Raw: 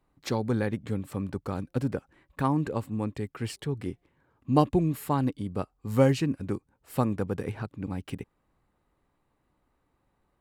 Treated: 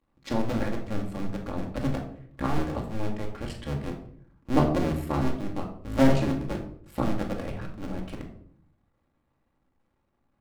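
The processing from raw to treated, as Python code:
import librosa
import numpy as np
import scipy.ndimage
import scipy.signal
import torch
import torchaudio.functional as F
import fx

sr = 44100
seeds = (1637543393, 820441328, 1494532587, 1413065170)

y = fx.cycle_switch(x, sr, every=2, mode='muted')
y = fx.high_shelf(y, sr, hz=7800.0, db=-10.0)
y = fx.room_shoebox(y, sr, seeds[0], volume_m3=930.0, walls='furnished', distance_m=2.3)
y = F.gain(torch.from_numpy(y), -1.5).numpy()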